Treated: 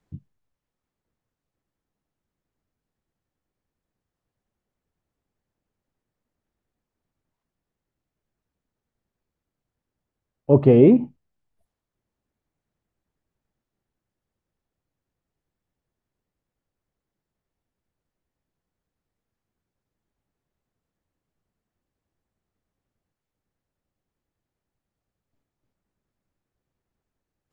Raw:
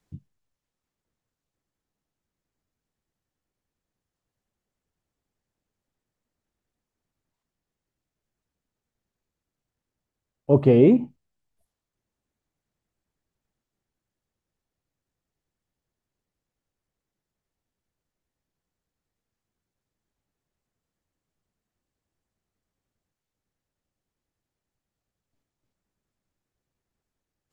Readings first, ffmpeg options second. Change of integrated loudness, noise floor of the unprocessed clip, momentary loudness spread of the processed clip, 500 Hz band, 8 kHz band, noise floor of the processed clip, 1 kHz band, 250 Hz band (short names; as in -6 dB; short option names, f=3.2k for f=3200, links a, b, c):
+2.5 dB, under -85 dBFS, 7 LU, +2.5 dB, n/a, under -85 dBFS, +2.0 dB, +2.5 dB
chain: -af "highshelf=f=3.2k:g=-9.5,volume=2.5dB"